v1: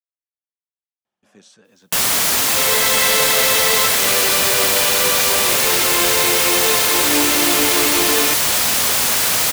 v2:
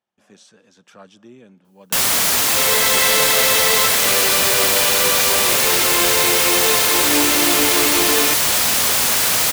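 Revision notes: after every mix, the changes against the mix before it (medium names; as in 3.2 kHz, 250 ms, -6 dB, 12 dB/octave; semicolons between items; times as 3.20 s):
speech: entry -1.05 s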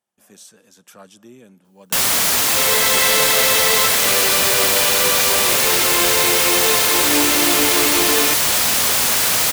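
speech: remove low-pass 4.6 kHz 12 dB/octave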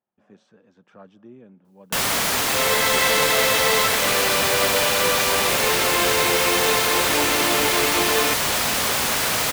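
speech: add tape spacing loss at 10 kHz 34 dB; second sound: add high-pass 360 Hz 24 dB/octave; master: add treble shelf 3.9 kHz -8.5 dB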